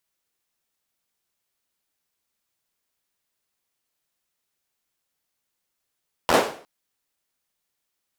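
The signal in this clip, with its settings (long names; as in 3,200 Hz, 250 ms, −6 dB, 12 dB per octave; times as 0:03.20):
synth clap length 0.36 s, bursts 5, apart 12 ms, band 520 Hz, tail 0.44 s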